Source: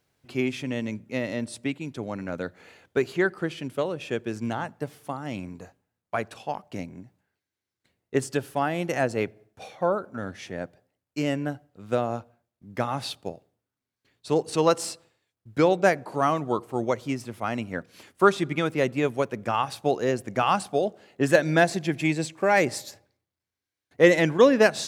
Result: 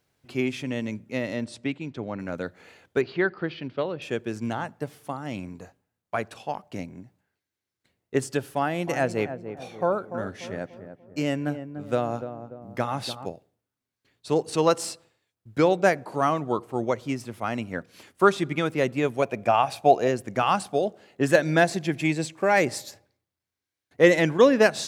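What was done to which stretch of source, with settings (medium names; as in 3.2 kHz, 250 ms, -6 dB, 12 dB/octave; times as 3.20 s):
1.40–2.18 s: low-pass 7.4 kHz -> 3.4 kHz
3.01–4.02 s: Chebyshev low-pass 4.6 kHz, order 4
8.58–13.26 s: filtered feedback delay 292 ms, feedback 49%, low-pass 910 Hz, level -9 dB
16.29–17.08 s: treble shelf 5.1 kHz -4 dB
19.22–20.08 s: small resonant body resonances 680/2400 Hz, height 12 dB, ringing for 20 ms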